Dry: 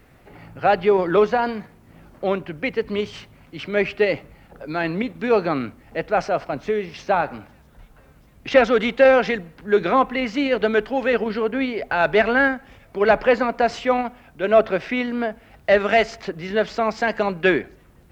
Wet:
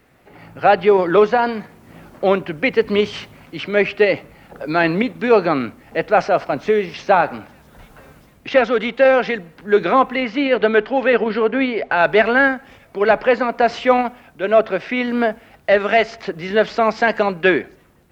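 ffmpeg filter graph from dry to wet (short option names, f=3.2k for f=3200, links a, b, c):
-filter_complex "[0:a]asettb=1/sr,asplit=3[a][b][c];[a]atrim=end=10.234[d];[b]atrim=start=10.23:end=11.97,asetpts=PTS-STARTPTS,afade=t=in:d=0.004:c=qsin,afade=t=out:st=1.736:d=0.004:c=qsin,lowpass=4k,equalizer=f=68:w=0.66:g=-4.5[e];[c]atrim=start=11.966[f];[d][e]acrossfade=d=0.004:c1=hsin:c2=qsin[g];[g][f]acrossfade=d=0.004:c1=qsin:c2=hsin,acrossover=split=5300[h][i];[i]acompressor=threshold=-55dB:ratio=4:attack=1:release=60[j];[h][j]amix=inputs=2:normalize=0,lowshelf=f=93:g=-11.5,dynaudnorm=f=150:g=5:m=11.5dB,volume=-1dB"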